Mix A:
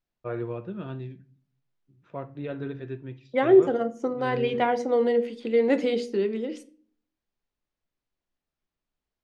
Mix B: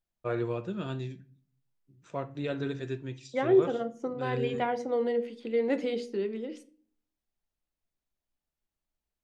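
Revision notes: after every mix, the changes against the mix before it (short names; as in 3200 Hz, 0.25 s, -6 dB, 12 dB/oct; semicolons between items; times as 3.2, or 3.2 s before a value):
first voice: remove air absorption 350 m; second voice -6.0 dB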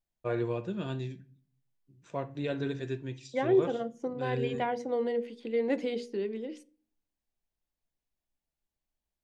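second voice: send -8.0 dB; master: add notch 1300 Hz, Q 7.7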